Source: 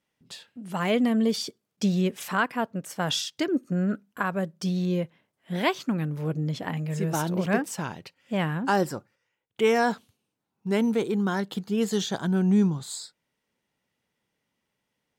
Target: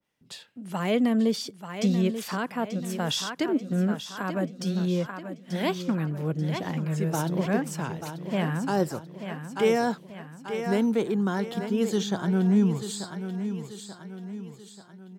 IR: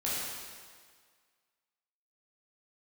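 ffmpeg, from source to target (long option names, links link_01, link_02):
-filter_complex "[0:a]aecho=1:1:886|1772|2658|3544|4430:0.316|0.149|0.0699|0.0328|0.0154,acrossover=split=150|640|3400[link_01][link_02][link_03][link_04];[link_03]alimiter=level_in=0.5dB:limit=-24dB:level=0:latency=1,volume=-0.5dB[link_05];[link_01][link_02][link_05][link_04]amix=inputs=4:normalize=0,adynamicequalizer=threshold=0.01:dfrequency=1700:dqfactor=0.7:tfrequency=1700:tqfactor=0.7:attack=5:release=100:ratio=0.375:range=1.5:mode=cutabove:tftype=highshelf"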